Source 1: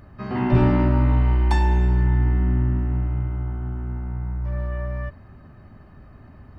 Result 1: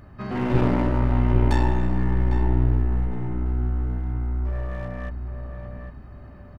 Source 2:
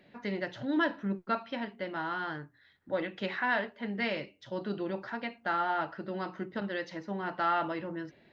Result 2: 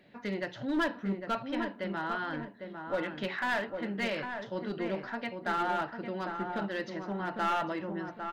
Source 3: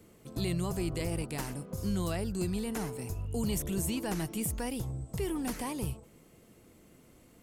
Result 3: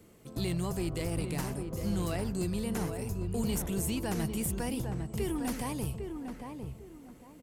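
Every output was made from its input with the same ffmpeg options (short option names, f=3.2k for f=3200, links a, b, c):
-filter_complex "[0:a]aeval=exprs='clip(val(0),-1,0.0447)':c=same,asplit=2[a][b];[b]adelay=803,lowpass=f=1.5k:p=1,volume=-5.5dB,asplit=2[c][d];[d]adelay=803,lowpass=f=1.5k:p=1,volume=0.29,asplit=2[e][f];[f]adelay=803,lowpass=f=1.5k:p=1,volume=0.29,asplit=2[g][h];[h]adelay=803,lowpass=f=1.5k:p=1,volume=0.29[i];[c][e][g][i]amix=inputs=4:normalize=0[j];[a][j]amix=inputs=2:normalize=0"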